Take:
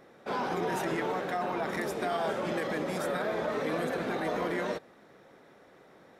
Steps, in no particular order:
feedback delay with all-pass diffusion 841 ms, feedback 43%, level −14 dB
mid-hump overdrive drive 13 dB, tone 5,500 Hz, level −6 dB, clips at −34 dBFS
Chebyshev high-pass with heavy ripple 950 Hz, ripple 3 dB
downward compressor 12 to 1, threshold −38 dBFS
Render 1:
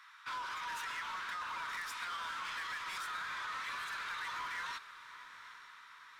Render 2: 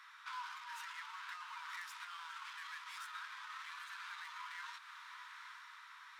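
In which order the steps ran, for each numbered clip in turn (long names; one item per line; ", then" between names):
Chebyshev high-pass with heavy ripple, then mid-hump overdrive, then downward compressor, then feedback delay with all-pass diffusion
mid-hump overdrive, then feedback delay with all-pass diffusion, then downward compressor, then Chebyshev high-pass with heavy ripple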